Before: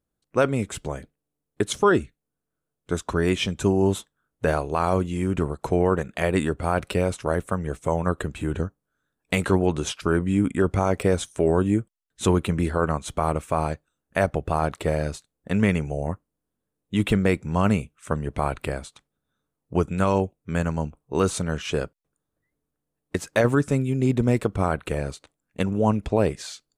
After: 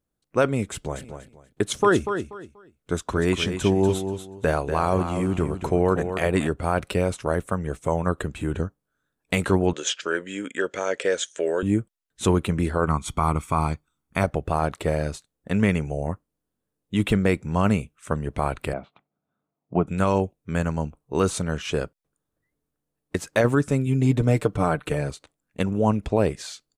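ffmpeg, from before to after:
ffmpeg -i in.wav -filter_complex "[0:a]asplit=3[link_01][link_02][link_03];[link_01]afade=type=out:start_time=0.92:duration=0.02[link_04];[link_02]aecho=1:1:241|482|723:0.376|0.0902|0.0216,afade=type=in:start_time=0.92:duration=0.02,afade=type=out:start_time=6.46:duration=0.02[link_05];[link_03]afade=type=in:start_time=6.46:duration=0.02[link_06];[link_04][link_05][link_06]amix=inputs=3:normalize=0,asettb=1/sr,asplit=3[link_07][link_08][link_09];[link_07]atrim=end=9.734[link_10];[link_08]atrim=start=9.73:end=11.63,asetpts=PTS-STARTPTS,afade=type=in:duration=0.004:curve=qsin,afade=type=out:start_time=1.896:duration=0.004:curve=qsin,highpass=490,equalizer=frequency=510:width_type=q:width=4:gain=6,equalizer=frequency=780:width_type=q:width=4:gain=-10,equalizer=frequency=1100:width_type=q:width=4:gain=-8,equalizer=frequency=1700:width_type=q:width=4:gain=8,equalizer=frequency=3200:width_type=q:width=4:gain=7,equalizer=frequency=6900:width_type=q:width=4:gain=9,lowpass=frequency=7600:width=0.5412,lowpass=frequency=7600:width=1.3066[link_11];[link_09]atrim=start=11.626[link_12];[link_10][link_11]acrossfade=duration=0.004:curve1=hsin:curve2=qsin[link_13];[link_13][link_12]acrossfade=duration=0.004:curve1=qsin:curve2=hsin,asettb=1/sr,asplit=3[link_14][link_15][link_16];[link_14]atrim=end=12.874[link_17];[link_15]atrim=start=12.87:end=14.24,asetpts=PTS-STARTPTS,afade=type=in:duration=0.004:curve=qsin,afade=type=out:start_time=1.366:duration=0.004:curve=qsin,aecho=1:1:0.9:0.62,atrim=end_sample=60417[link_18];[link_16]atrim=start=14.236[link_19];[link_17][link_18]acrossfade=duration=0.004:curve1=hsin:curve2=qsin[link_20];[link_20][link_19]acrossfade=duration=0.004:curve1=qsin:curve2=hsin,asettb=1/sr,asplit=3[link_21][link_22][link_23];[link_21]atrim=end=18.734[link_24];[link_22]atrim=start=18.73:end=19.87,asetpts=PTS-STARTPTS,afade=type=in:duration=0.004:curve=qsin,afade=type=out:start_time=1.136:duration=0.004:curve=qsin,highpass=130,equalizer=frequency=180:width_type=q:width=4:gain=4,equalizer=frequency=490:width_type=q:width=4:gain=-4,equalizer=frequency=690:width_type=q:width=4:gain=8,equalizer=frequency=1700:width_type=q:width=4:gain=-9,lowpass=frequency=2400:width=0.5412,lowpass=frequency=2400:width=1.3066[link_25];[link_23]atrim=start=19.866[link_26];[link_24][link_25]acrossfade=duration=0.004:curve1=hsin:curve2=qsin[link_27];[link_27][link_26]acrossfade=duration=0.004:curve1=qsin:curve2=hsin,asettb=1/sr,asplit=3[link_28][link_29][link_30];[link_28]atrim=end=23.864[link_31];[link_29]atrim=start=23.86:end=25.1,asetpts=PTS-STARTPTS,afade=type=in:duration=0.004:curve=qsin,afade=type=out:start_time=1.236:duration=0.004:curve=qsin,aecho=1:1:6.7:0.61,atrim=end_sample=54684[link_32];[link_30]atrim=start=25.096[link_33];[link_31][link_32]acrossfade=duration=0.004:curve1=hsin:curve2=qsin[link_34];[link_34][link_33]acrossfade=duration=0.004:curve1=qsin:curve2=hsin" out.wav

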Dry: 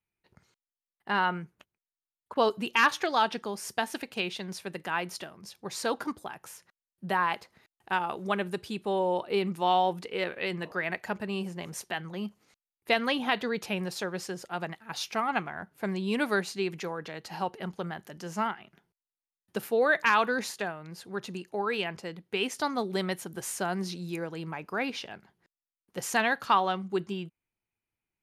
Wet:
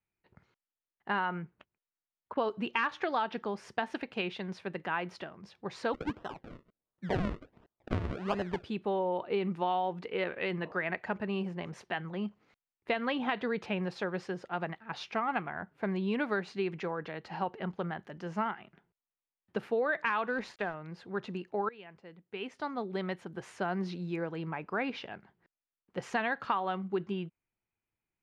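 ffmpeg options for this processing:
ffmpeg -i in.wav -filter_complex "[0:a]asplit=3[link_01][link_02][link_03];[link_01]afade=type=out:start_time=5.93:duration=0.02[link_04];[link_02]acrusher=samples=38:mix=1:aa=0.000001:lfo=1:lforange=38:lforate=1.4,afade=type=in:start_time=5.93:duration=0.02,afade=type=out:start_time=8.63:duration=0.02[link_05];[link_03]afade=type=in:start_time=8.63:duration=0.02[link_06];[link_04][link_05][link_06]amix=inputs=3:normalize=0,asettb=1/sr,asplit=3[link_07][link_08][link_09];[link_07]atrim=end=20.274[link_10];[link_08]atrim=start=20.27:end=20.74,asetpts=PTS-STARTPTS,afade=type=in:duration=0.004:curve=qsin,afade=type=out:start_time=0.466:duration=0.004:curve=qsin,aeval=exprs='sgn(val(0))*max(abs(val(0))-0.00335,0)':channel_layout=same[link_11];[link_09]atrim=start=20.736[link_12];[link_10][link_11]acrossfade=duration=0.004:curve1=hsin:curve2=qsin[link_13];[link_13][link_12]acrossfade=duration=0.004:curve1=qsin:curve2=hsin,asplit=2[link_14][link_15];[link_14]atrim=end=21.69,asetpts=PTS-STARTPTS,afade=type=out:start_time=21.686:duration=0.004:curve=hsin:silence=0.0841395[link_16];[link_15]atrim=start=21.69,asetpts=PTS-STARTPTS,afade=type=in:duration=2.21:silence=0.0841395[link_17];[link_16][link_17]concat=n=2:v=0:a=1,lowpass=2600,acompressor=threshold=-27dB:ratio=6" out.wav

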